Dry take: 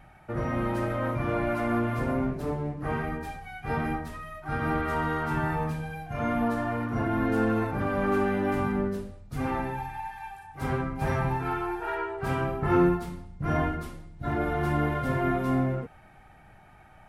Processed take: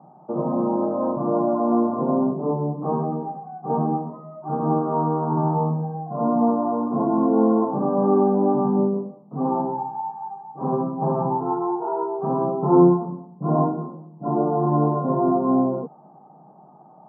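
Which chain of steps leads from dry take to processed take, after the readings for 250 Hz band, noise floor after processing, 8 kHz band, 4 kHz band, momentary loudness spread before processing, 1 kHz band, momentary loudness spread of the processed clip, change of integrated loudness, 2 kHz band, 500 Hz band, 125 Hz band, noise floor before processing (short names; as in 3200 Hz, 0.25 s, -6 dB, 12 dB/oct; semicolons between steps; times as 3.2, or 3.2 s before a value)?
+8.0 dB, -49 dBFS, n/a, under -35 dB, 11 LU, +6.5 dB, 12 LU, +6.5 dB, under -20 dB, +8.0 dB, +3.0 dB, -53 dBFS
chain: Chebyshev band-pass 150–1100 Hz, order 5; gain +8.5 dB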